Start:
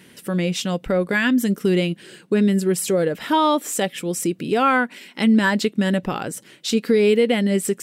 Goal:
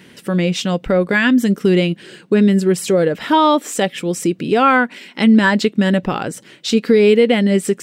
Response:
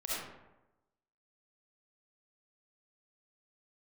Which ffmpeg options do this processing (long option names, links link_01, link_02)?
-af "equalizer=frequency=12000:width_type=o:width=1:gain=-10,volume=5dB"